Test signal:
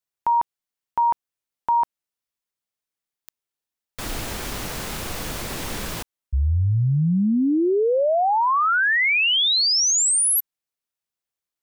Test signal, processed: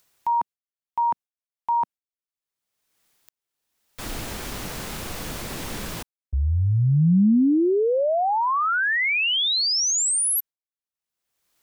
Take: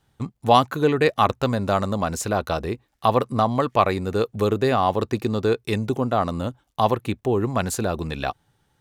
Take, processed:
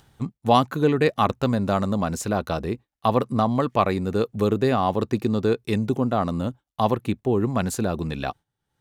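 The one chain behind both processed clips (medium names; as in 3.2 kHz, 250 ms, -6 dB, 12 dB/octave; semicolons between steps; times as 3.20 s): expander -32 dBFS, range -15 dB; dynamic bell 200 Hz, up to +6 dB, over -36 dBFS, Q 0.89; upward compressor, threshold -34 dBFS; trim -3 dB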